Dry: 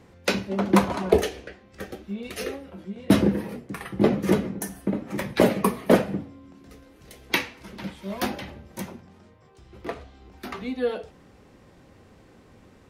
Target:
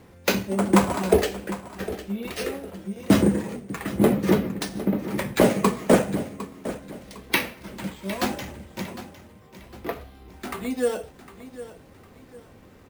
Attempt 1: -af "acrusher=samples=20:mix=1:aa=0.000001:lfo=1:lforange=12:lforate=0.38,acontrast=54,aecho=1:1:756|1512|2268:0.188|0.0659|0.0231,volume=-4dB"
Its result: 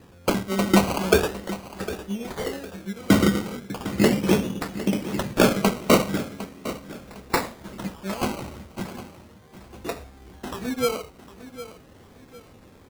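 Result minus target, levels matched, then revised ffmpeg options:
sample-and-hold swept by an LFO: distortion +12 dB
-af "acrusher=samples=4:mix=1:aa=0.000001:lfo=1:lforange=2.4:lforate=0.38,acontrast=54,aecho=1:1:756|1512|2268:0.188|0.0659|0.0231,volume=-4dB"

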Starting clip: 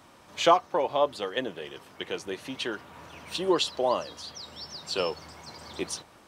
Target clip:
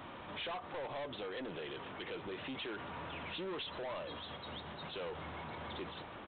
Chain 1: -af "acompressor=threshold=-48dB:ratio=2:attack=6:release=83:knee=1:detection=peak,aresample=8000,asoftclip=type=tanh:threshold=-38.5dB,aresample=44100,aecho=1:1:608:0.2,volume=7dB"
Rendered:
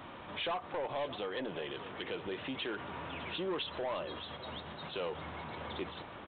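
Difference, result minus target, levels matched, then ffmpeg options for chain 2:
echo-to-direct +9.5 dB; soft clipping: distortion −5 dB
-af "acompressor=threshold=-48dB:ratio=2:attack=6:release=83:knee=1:detection=peak,aresample=8000,asoftclip=type=tanh:threshold=-46dB,aresample=44100,aecho=1:1:608:0.0668,volume=7dB"

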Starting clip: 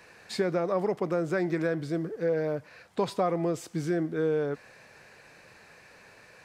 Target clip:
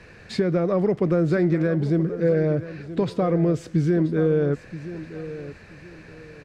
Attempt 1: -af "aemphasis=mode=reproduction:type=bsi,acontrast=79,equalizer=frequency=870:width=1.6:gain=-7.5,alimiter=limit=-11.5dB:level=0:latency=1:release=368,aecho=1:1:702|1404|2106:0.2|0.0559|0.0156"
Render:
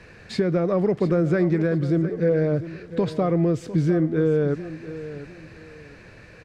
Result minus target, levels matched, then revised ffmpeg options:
echo 275 ms early
-af "aemphasis=mode=reproduction:type=bsi,acontrast=79,equalizer=frequency=870:width=1.6:gain=-7.5,alimiter=limit=-11.5dB:level=0:latency=1:release=368,aecho=1:1:977|1954|2931:0.2|0.0559|0.0156"

